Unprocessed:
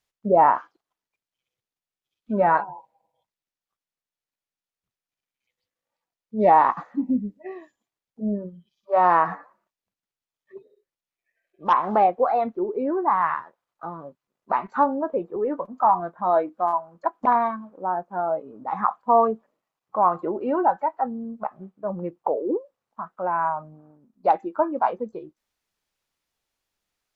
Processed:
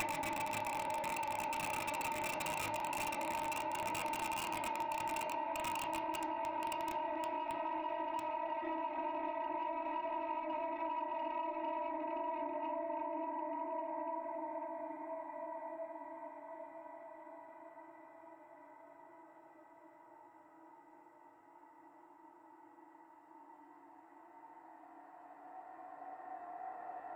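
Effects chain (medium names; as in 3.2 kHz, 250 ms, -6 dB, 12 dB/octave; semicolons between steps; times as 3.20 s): Paulstretch 17×, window 0.05 s, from 19.39 s; reverb removal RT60 1.1 s; Paulstretch 13×, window 1.00 s, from 24.74 s; echo that smears into a reverb 1474 ms, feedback 41%, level -12.5 dB; integer overflow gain 16 dB; bass shelf 420 Hz +7 dB; peak limiter -24.5 dBFS, peak gain reduction 11.5 dB; saturation -28 dBFS, distortion -17 dB; reverberation RT60 0.40 s, pre-delay 3 ms, DRR 1 dB; compression, threshold -39 dBFS, peak gain reduction 11 dB; trim +2.5 dB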